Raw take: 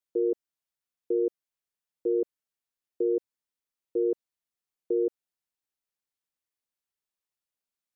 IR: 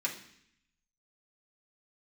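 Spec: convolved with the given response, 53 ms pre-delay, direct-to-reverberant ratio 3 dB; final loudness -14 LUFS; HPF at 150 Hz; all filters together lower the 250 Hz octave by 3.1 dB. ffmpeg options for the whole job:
-filter_complex "[0:a]highpass=150,equalizer=f=250:t=o:g=-6,asplit=2[a][b];[1:a]atrim=start_sample=2205,adelay=53[c];[b][c]afir=irnorm=-1:irlink=0,volume=-7.5dB[d];[a][d]amix=inputs=2:normalize=0,volume=18.5dB"

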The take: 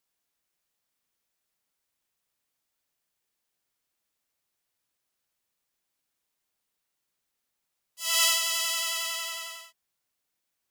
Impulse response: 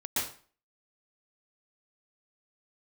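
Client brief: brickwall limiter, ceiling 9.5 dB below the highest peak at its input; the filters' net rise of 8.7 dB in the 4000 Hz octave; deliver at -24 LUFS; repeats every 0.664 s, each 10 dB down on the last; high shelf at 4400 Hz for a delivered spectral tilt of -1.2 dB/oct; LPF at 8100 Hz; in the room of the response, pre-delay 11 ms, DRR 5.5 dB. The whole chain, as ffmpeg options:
-filter_complex "[0:a]lowpass=8.1k,equalizer=f=4k:t=o:g=7.5,highshelf=f=4.4k:g=7.5,alimiter=limit=-12.5dB:level=0:latency=1,aecho=1:1:664|1328|1992|2656:0.316|0.101|0.0324|0.0104,asplit=2[a][b];[1:a]atrim=start_sample=2205,adelay=11[c];[b][c]afir=irnorm=-1:irlink=0,volume=-12.5dB[d];[a][d]amix=inputs=2:normalize=0,volume=-2.5dB"

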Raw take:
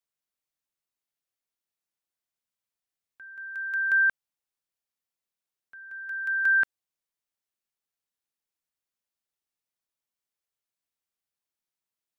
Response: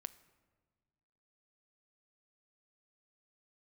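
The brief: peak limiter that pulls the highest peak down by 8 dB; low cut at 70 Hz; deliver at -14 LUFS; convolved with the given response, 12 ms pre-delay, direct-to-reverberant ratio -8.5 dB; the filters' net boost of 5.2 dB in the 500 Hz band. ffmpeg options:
-filter_complex "[0:a]highpass=70,equalizer=f=500:t=o:g=6.5,alimiter=level_in=1dB:limit=-24dB:level=0:latency=1,volume=-1dB,asplit=2[a][b];[1:a]atrim=start_sample=2205,adelay=12[c];[b][c]afir=irnorm=-1:irlink=0,volume=12.5dB[d];[a][d]amix=inputs=2:normalize=0,volume=7dB"

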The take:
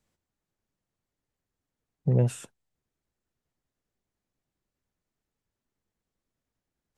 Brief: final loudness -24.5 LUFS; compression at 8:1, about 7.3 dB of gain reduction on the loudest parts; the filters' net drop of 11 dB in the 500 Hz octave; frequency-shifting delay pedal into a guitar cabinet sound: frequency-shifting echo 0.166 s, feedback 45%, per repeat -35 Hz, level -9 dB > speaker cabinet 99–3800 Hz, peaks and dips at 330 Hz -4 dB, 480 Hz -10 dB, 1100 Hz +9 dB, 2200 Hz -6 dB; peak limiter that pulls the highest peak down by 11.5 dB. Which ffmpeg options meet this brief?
-filter_complex "[0:a]equalizer=f=500:t=o:g=-6.5,acompressor=threshold=-26dB:ratio=8,alimiter=level_in=5.5dB:limit=-24dB:level=0:latency=1,volume=-5.5dB,asplit=6[a][b][c][d][e][f];[b]adelay=166,afreqshift=-35,volume=-9dB[g];[c]adelay=332,afreqshift=-70,volume=-15.9dB[h];[d]adelay=498,afreqshift=-105,volume=-22.9dB[i];[e]adelay=664,afreqshift=-140,volume=-29.8dB[j];[f]adelay=830,afreqshift=-175,volume=-36.7dB[k];[a][g][h][i][j][k]amix=inputs=6:normalize=0,highpass=99,equalizer=f=330:t=q:w=4:g=-4,equalizer=f=480:t=q:w=4:g=-10,equalizer=f=1.1k:t=q:w=4:g=9,equalizer=f=2.2k:t=q:w=4:g=-6,lowpass=f=3.8k:w=0.5412,lowpass=f=3.8k:w=1.3066,volume=18dB"

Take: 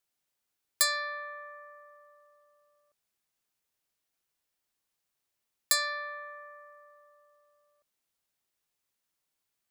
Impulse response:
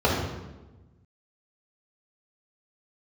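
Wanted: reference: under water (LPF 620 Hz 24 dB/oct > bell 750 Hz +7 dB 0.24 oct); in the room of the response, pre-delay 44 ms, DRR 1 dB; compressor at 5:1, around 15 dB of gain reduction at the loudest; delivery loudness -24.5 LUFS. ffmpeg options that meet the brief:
-filter_complex "[0:a]acompressor=threshold=-39dB:ratio=5,asplit=2[a][b];[1:a]atrim=start_sample=2205,adelay=44[c];[b][c]afir=irnorm=-1:irlink=0,volume=-19.5dB[d];[a][d]amix=inputs=2:normalize=0,lowpass=f=620:w=0.5412,lowpass=f=620:w=1.3066,equalizer=f=750:t=o:w=0.24:g=7,volume=29.5dB"

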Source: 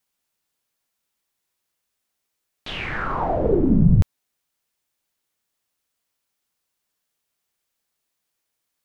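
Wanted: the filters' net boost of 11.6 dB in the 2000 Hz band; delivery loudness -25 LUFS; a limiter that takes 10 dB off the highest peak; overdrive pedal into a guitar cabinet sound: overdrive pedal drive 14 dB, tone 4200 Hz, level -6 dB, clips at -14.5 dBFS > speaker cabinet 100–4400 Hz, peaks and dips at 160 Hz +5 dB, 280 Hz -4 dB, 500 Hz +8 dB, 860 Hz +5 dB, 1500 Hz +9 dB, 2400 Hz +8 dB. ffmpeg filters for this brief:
-filter_complex "[0:a]equalizer=f=2k:t=o:g=6,alimiter=limit=-14.5dB:level=0:latency=1,asplit=2[a][b];[b]highpass=f=720:p=1,volume=14dB,asoftclip=type=tanh:threshold=-14.5dB[c];[a][c]amix=inputs=2:normalize=0,lowpass=f=4.2k:p=1,volume=-6dB,highpass=100,equalizer=f=160:t=q:w=4:g=5,equalizer=f=280:t=q:w=4:g=-4,equalizer=f=500:t=q:w=4:g=8,equalizer=f=860:t=q:w=4:g=5,equalizer=f=1.5k:t=q:w=4:g=9,equalizer=f=2.4k:t=q:w=4:g=8,lowpass=f=4.4k:w=0.5412,lowpass=f=4.4k:w=1.3066,volume=-7.5dB"

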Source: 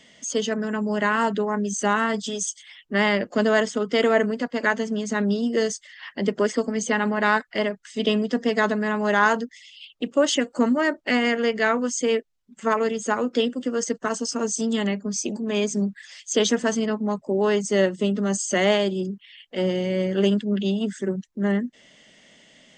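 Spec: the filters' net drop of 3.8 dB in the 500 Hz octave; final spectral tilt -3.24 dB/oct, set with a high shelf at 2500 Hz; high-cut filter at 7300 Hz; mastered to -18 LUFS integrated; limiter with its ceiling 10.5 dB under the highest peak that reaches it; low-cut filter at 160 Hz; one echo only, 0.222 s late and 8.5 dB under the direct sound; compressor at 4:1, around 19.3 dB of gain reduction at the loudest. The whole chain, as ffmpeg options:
-af "highpass=160,lowpass=7.3k,equalizer=f=500:t=o:g=-5,highshelf=f=2.5k:g=7.5,acompressor=threshold=-39dB:ratio=4,alimiter=level_in=9dB:limit=-24dB:level=0:latency=1,volume=-9dB,aecho=1:1:222:0.376,volume=23.5dB"

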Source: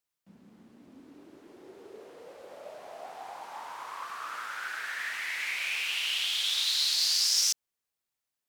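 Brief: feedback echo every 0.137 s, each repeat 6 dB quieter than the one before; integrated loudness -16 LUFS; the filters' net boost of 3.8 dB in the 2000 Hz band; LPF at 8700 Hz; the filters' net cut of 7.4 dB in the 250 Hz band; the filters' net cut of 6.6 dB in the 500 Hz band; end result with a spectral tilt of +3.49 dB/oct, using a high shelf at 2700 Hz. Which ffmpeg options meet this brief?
-af "lowpass=8.7k,equalizer=f=250:t=o:g=-7,equalizer=f=500:t=o:g=-7.5,equalizer=f=2k:t=o:g=7,highshelf=f=2.7k:g=-4,aecho=1:1:137|274|411|548|685|822:0.501|0.251|0.125|0.0626|0.0313|0.0157,volume=11dB"

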